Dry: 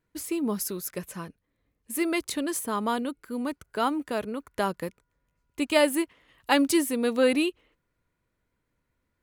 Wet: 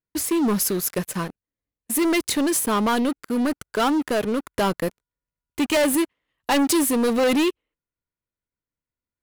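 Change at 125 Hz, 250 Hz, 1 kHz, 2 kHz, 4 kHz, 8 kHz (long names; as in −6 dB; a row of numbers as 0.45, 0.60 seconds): +9.0, +6.0, +5.0, +3.5, +5.0, +8.5 decibels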